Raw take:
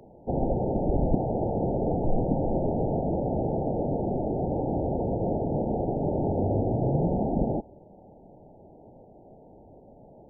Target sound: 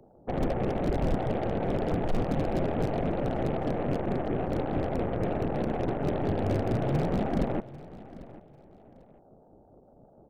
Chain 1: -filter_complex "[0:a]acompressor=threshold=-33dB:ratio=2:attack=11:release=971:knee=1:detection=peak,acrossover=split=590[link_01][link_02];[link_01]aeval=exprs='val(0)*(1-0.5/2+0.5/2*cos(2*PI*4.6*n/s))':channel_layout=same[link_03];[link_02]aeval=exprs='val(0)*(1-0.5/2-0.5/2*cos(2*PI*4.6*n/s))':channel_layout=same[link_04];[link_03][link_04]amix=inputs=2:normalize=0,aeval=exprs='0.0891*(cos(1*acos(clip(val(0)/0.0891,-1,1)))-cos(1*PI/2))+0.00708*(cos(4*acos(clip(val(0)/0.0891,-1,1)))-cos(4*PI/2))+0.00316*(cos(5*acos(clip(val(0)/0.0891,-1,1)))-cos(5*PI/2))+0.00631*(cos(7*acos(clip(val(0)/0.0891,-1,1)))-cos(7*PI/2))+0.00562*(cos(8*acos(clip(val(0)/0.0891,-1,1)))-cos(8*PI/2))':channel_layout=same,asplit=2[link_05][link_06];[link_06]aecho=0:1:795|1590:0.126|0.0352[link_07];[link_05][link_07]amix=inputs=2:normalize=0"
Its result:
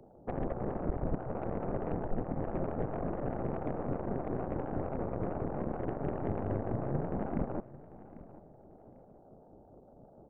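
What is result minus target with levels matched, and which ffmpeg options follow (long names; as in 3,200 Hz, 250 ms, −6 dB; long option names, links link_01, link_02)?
downward compressor: peak gain reduction +10 dB
-filter_complex "[0:a]acrossover=split=590[link_01][link_02];[link_01]aeval=exprs='val(0)*(1-0.5/2+0.5/2*cos(2*PI*4.6*n/s))':channel_layout=same[link_03];[link_02]aeval=exprs='val(0)*(1-0.5/2-0.5/2*cos(2*PI*4.6*n/s))':channel_layout=same[link_04];[link_03][link_04]amix=inputs=2:normalize=0,aeval=exprs='0.0891*(cos(1*acos(clip(val(0)/0.0891,-1,1)))-cos(1*PI/2))+0.00708*(cos(4*acos(clip(val(0)/0.0891,-1,1)))-cos(4*PI/2))+0.00316*(cos(5*acos(clip(val(0)/0.0891,-1,1)))-cos(5*PI/2))+0.00631*(cos(7*acos(clip(val(0)/0.0891,-1,1)))-cos(7*PI/2))+0.00562*(cos(8*acos(clip(val(0)/0.0891,-1,1)))-cos(8*PI/2))':channel_layout=same,asplit=2[link_05][link_06];[link_06]aecho=0:1:795|1590:0.126|0.0352[link_07];[link_05][link_07]amix=inputs=2:normalize=0"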